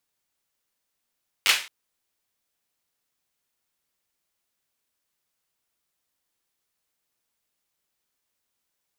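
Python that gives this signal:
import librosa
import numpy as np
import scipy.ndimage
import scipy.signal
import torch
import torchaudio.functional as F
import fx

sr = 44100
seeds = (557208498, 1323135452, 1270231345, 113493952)

y = fx.drum_clap(sr, seeds[0], length_s=0.22, bursts=4, spacing_ms=10, hz=2500.0, decay_s=0.35)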